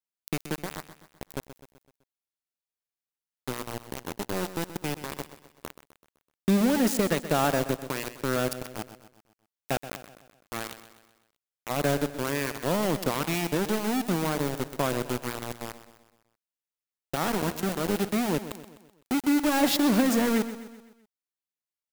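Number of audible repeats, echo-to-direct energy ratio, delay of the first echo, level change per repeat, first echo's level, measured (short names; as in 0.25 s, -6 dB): 4, -11.5 dB, 0.127 s, -6.0 dB, -13.0 dB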